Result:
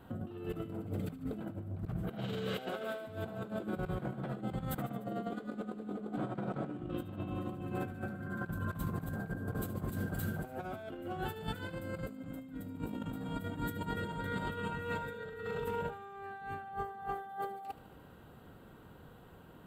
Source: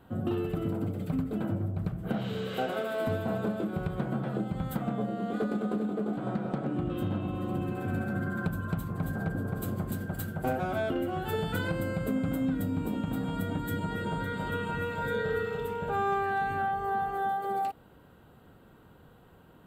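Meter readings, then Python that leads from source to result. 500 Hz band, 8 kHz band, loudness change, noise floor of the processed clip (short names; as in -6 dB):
-8.0 dB, -5.0 dB, -8.0 dB, -55 dBFS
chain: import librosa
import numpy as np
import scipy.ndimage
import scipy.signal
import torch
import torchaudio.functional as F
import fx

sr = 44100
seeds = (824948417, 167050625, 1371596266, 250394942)

y = fx.over_compress(x, sr, threshold_db=-35.0, ratio=-0.5)
y = fx.echo_wet_highpass(y, sr, ms=74, feedback_pct=67, hz=1500.0, wet_db=-14.5)
y = F.gain(torch.from_numpy(y), -3.5).numpy()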